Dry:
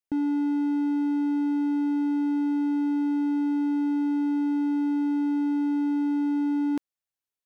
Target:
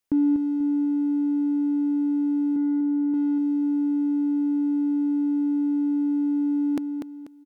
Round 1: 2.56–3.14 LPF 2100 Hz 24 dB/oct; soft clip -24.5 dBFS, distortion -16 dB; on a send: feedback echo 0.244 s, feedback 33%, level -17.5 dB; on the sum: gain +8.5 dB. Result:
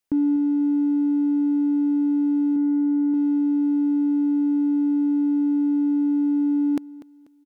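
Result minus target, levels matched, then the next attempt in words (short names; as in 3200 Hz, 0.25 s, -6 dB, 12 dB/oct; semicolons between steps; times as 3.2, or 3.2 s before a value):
echo-to-direct -10.5 dB
2.56–3.14 LPF 2100 Hz 24 dB/oct; soft clip -24.5 dBFS, distortion -16 dB; on a send: feedback echo 0.244 s, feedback 33%, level -7 dB; on the sum: gain +8.5 dB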